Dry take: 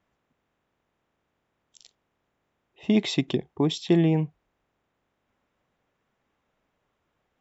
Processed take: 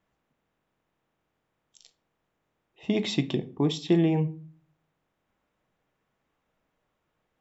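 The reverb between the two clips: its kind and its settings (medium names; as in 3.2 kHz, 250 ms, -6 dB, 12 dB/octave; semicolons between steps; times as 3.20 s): simulated room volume 300 m³, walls furnished, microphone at 0.6 m; trim -2.5 dB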